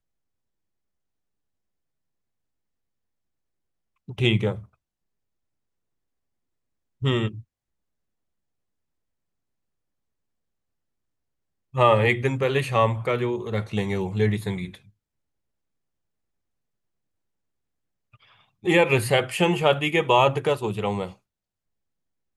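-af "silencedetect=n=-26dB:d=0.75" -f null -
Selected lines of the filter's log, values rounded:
silence_start: 0.00
silence_end: 4.19 | silence_duration: 4.19
silence_start: 4.53
silence_end: 7.03 | silence_duration: 2.50
silence_start: 7.28
silence_end: 11.76 | silence_duration: 4.48
silence_start: 14.66
silence_end: 18.66 | silence_duration: 4.00
silence_start: 21.05
silence_end: 22.36 | silence_duration: 1.31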